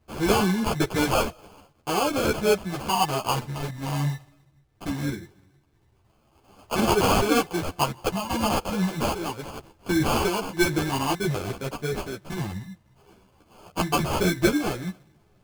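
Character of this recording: phasing stages 8, 0.21 Hz, lowest notch 460–1800 Hz; aliases and images of a low sample rate 1900 Hz, jitter 0%; random-step tremolo; a shimmering, thickened sound

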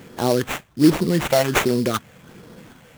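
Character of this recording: phasing stages 6, 1.3 Hz, lowest notch 320–2200 Hz; aliases and images of a low sample rate 4900 Hz, jitter 20%

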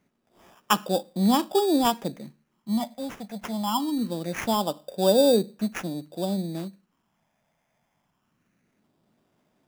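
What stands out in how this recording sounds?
phasing stages 6, 0.23 Hz, lowest notch 340–3900 Hz; aliases and images of a low sample rate 4200 Hz, jitter 0%

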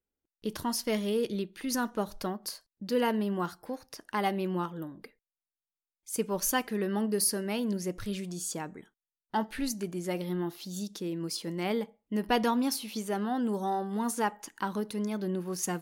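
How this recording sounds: noise floor -95 dBFS; spectral tilt -4.5 dB/oct

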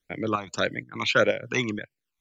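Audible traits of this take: chopped level 2.1 Hz, depth 60%, duty 75%; phasing stages 12, 1.7 Hz, lowest notch 500–1200 Hz

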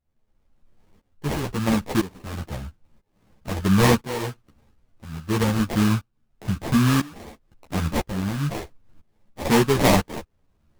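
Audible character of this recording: aliases and images of a low sample rate 1400 Hz, jitter 20%; tremolo saw up 1 Hz, depth 90%; a shimmering, thickened sound

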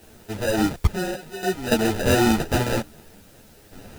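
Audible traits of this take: aliases and images of a low sample rate 1100 Hz, jitter 0%; random-step tremolo 3.5 Hz, depth 90%; a quantiser's noise floor 10-bit, dither triangular; a shimmering, thickened sound

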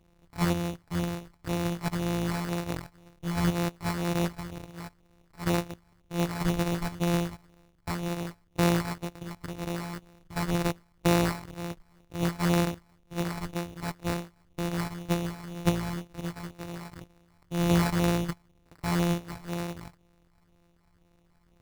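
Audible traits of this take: a buzz of ramps at a fixed pitch in blocks of 256 samples; phasing stages 12, 2 Hz, lowest notch 410–3800 Hz; aliases and images of a low sample rate 3200 Hz, jitter 0%

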